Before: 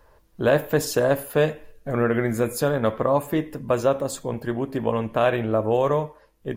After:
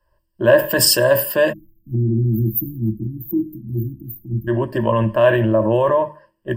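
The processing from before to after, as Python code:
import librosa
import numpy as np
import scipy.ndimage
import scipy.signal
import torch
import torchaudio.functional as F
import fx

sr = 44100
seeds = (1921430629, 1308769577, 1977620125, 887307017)

p1 = fx.hum_notches(x, sr, base_hz=50, count=4)
p2 = fx.spec_erase(p1, sr, start_s=1.53, length_s=2.95, low_hz=360.0, high_hz=12000.0)
p3 = fx.ripple_eq(p2, sr, per_octave=1.3, db=16)
p4 = fx.over_compress(p3, sr, threshold_db=-23.0, ratio=-1.0)
p5 = p3 + (p4 * 10.0 ** (0.0 / 20.0))
p6 = fx.band_widen(p5, sr, depth_pct=70)
y = p6 * 10.0 ** (-1.5 / 20.0)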